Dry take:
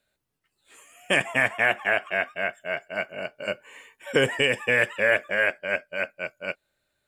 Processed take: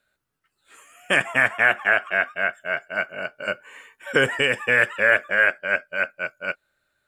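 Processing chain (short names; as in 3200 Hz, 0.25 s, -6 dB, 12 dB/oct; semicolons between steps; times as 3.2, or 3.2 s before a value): bell 1400 Hz +9.5 dB 0.57 oct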